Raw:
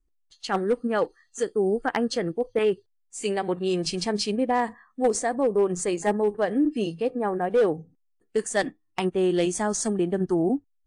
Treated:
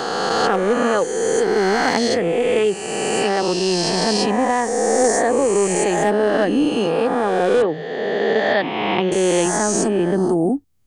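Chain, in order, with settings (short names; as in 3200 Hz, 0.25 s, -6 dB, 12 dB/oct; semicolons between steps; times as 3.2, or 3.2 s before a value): spectral swells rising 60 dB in 2.18 s; 7.62–9.12 elliptic band-pass 120–3600 Hz, stop band 40 dB; three-band squash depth 40%; gain +3 dB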